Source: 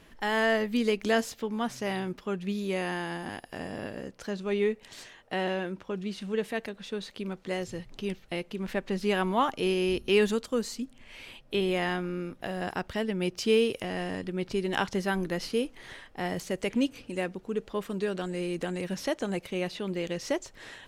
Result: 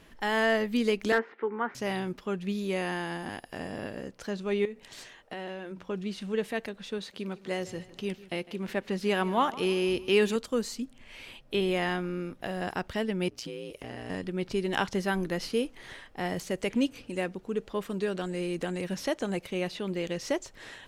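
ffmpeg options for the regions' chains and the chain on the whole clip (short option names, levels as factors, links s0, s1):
-filter_complex "[0:a]asettb=1/sr,asplit=3[s0][s1][s2];[s0]atrim=end=1.124[s3];[s1]atrim=start=1.12:end=1.75,asetpts=PTS-STARTPTS,afade=t=in:d=0.004:c=qsin,afade=t=out:st=0.626:d=0.004:c=qsin,highpass=f=250:w=0.5412,highpass=f=250:w=1.3066,equalizer=f=260:t=q:w=4:g=-5,equalizer=f=390:t=q:w=4:g=9,equalizer=f=620:t=q:w=4:g=-9,equalizer=f=900:t=q:w=4:g=4,equalizer=f=1400:t=q:w=4:g=7,equalizer=f=2000:t=q:w=4:g=6,lowpass=f=2100:w=0.5412,lowpass=f=2100:w=1.3066,asoftclip=type=hard:threshold=0.158[s4];[s2]atrim=start=1.746[s5];[s3][s4]acrossfade=d=0.004:c1=hsin:c2=qsin[s6];[s6][s5]acrossfade=d=0.004:c1=qsin:c2=hsin,asettb=1/sr,asplit=3[s7][s8][s9];[s7]atrim=end=4.654[s10];[s8]atrim=start=4.65:end=5.89,asetpts=PTS-STARTPTS,afade=t=in:d=0.004:c=qsin,afade=t=out:st=1.236:d=0.004:c=qsin,bandreject=f=60:t=h:w=6,bandreject=f=120:t=h:w=6,bandreject=f=180:t=h:w=6,bandreject=f=240:t=h:w=6,bandreject=f=300:t=h:w=6,acompressor=threshold=0.0178:ratio=6:attack=3.2:release=140:knee=1:detection=peak[s11];[s9]atrim=start=5.886[s12];[s10][s11]acrossfade=d=0.004:c1=hsin:c2=qsin[s13];[s13][s12]acrossfade=d=0.004:c1=qsin:c2=hsin,asettb=1/sr,asplit=3[s14][s15][s16];[s14]atrim=end=6.984[s17];[s15]atrim=start=6.98:end=10.36,asetpts=PTS-STARTPTS,afade=t=in:d=0.004:c=qsin,afade=t=out:st=3.376:d=0.004:c=qsin,highpass=f=98:p=1,aecho=1:1:154|308|462|616:0.119|0.0547|0.0251|0.0116,atrim=end_sample=149058[s18];[s16]atrim=start=10.356[s19];[s17][s18]acrossfade=d=0.004:c1=hsin:c2=qsin[s20];[s20][s19]acrossfade=d=0.004:c1=qsin:c2=hsin,asettb=1/sr,asplit=3[s21][s22][s23];[s21]atrim=end=13.284[s24];[s22]atrim=start=13.28:end=14.1,asetpts=PTS-STARTPTS,afade=t=in:d=0.004:c=qsin,afade=t=out:st=0.816:d=0.004:c=qsin,acompressor=threshold=0.0251:ratio=16:attack=3.2:release=140:knee=1:detection=peak,aeval=exprs='val(0)*sin(2*PI*60*n/s)':c=same[s25];[s23]atrim=start=14.096[s26];[s24][s25]acrossfade=d=0.004:c1=hsin:c2=qsin[s27];[s27][s26]acrossfade=d=0.004:c1=qsin:c2=hsin"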